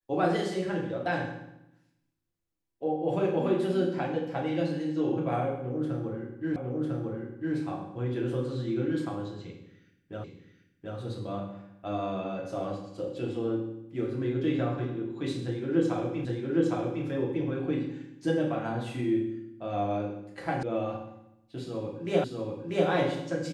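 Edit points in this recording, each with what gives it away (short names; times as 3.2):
6.56 repeat of the last 1 s
10.24 repeat of the last 0.73 s
16.25 repeat of the last 0.81 s
20.63 sound cut off
22.24 repeat of the last 0.64 s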